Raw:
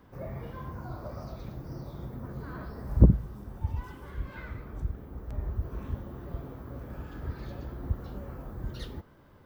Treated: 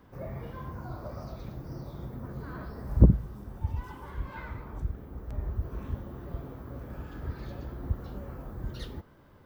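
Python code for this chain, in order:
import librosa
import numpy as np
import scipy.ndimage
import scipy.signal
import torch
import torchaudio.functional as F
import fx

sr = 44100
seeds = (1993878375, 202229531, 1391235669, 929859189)

y = fx.peak_eq(x, sr, hz=930.0, db=9.0, octaves=0.42, at=(3.89, 4.79))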